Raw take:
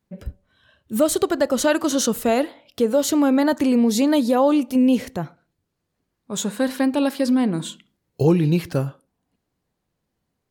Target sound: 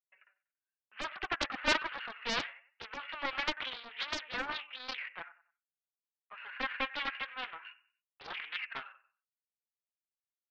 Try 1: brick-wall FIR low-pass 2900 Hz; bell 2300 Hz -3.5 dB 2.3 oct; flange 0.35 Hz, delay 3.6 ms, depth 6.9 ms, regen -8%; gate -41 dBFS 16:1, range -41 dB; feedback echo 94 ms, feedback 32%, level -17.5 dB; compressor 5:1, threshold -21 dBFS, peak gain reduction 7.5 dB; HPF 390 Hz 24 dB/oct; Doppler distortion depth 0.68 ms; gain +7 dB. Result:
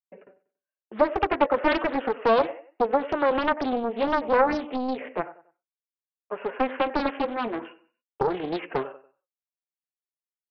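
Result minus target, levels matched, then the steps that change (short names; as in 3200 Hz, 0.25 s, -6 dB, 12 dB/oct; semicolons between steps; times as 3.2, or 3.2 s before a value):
500 Hz band +10.5 dB; compressor: peak gain reduction +7.5 dB
change: HPF 1500 Hz 24 dB/oct; remove: compressor 5:1, threshold -21 dBFS, peak gain reduction 7.5 dB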